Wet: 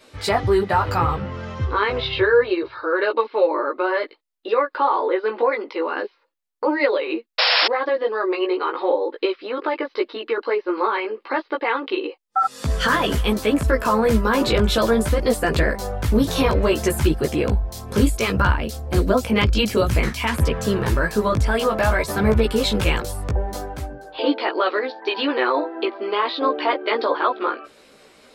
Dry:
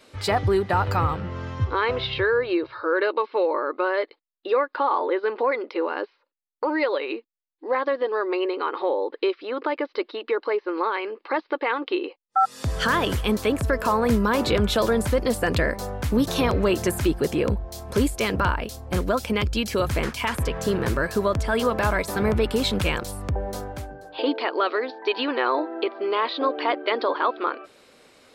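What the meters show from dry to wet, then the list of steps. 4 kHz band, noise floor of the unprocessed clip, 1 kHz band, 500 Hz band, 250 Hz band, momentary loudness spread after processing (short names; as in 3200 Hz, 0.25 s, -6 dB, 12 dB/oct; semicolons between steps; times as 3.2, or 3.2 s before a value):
+5.5 dB, -69 dBFS, +2.5 dB, +3.0 dB, +3.0 dB, 7 LU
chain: chorus voices 4, 0.58 Hz, delay 16 ms, depth 3.1 ms; painted sound noise, 7.38–7.68, 470–5500 Hz -23 dBFS; gain +6 dB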